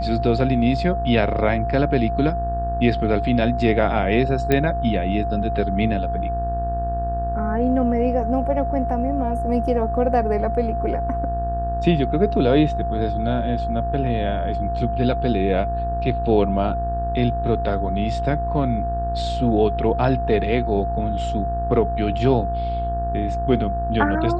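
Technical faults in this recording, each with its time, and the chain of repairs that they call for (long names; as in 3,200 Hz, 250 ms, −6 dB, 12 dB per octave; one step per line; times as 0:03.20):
mains buzz 60 Hz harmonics 30 −26 dBFS
whistle 690 Hz −24 dBFS
0:04.52: click −7 dBFS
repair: click removal
hum removal 60 Hz, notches 30
notch filter 690 Hz, Q 30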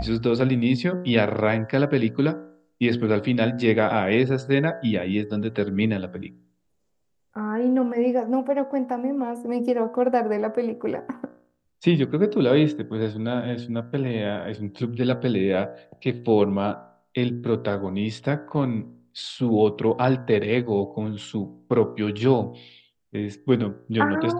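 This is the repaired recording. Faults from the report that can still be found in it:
0:04.52: click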